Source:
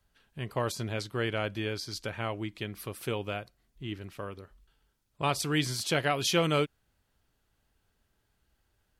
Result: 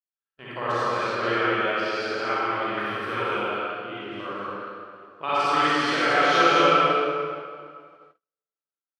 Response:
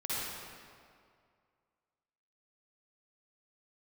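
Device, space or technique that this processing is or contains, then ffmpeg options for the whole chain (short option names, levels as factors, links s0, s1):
station announcement: -filter_complex "[0:a]highpass=300,lowpass=3800,equalizer=f=1300:t=o:w=0.51:g=8.5,aecho=1:1:43.73|163.3|230.3:0.501|0.562|0.631[s0];[1:a]atrim=start_sample=2205[s1];[s0][s1]afir=irnorm=-1:irlink=0,agate=range=0.0126:threshold=0.00282:ratio=16:detection=peak,asettb=1/sr,asplit=3[s2][s3][s4];[s2]atrim=end=2.774[s5];[s3]atrim=start=2.77:end=3.37,asetpts=PTS-STARTPTS,afade=t=in:d=0.004:c=qsin,afade=t=out:st=0.596:d=0.004:c=qsin,equalizer=f=100:t=o:w=0.67:g=8,equalizer=f=1600:t=o:w=0.67:g=7,equalizer=f=10000:t=o:w=0.67:g=-3[s6];[s4]atrim=start=3.366[s7];[s5][s6]acrossfade=d=0.004:c1=hsin:c2=qsin[s8];[s8][s7]acrossfade=d=0.004:c1=qsin:c2=hsin"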